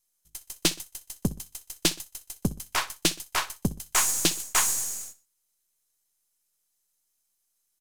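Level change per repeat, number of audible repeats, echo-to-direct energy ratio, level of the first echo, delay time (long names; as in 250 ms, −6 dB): −7.5 dB, 2, −17.5 dB, −18.0 dB, 62 ms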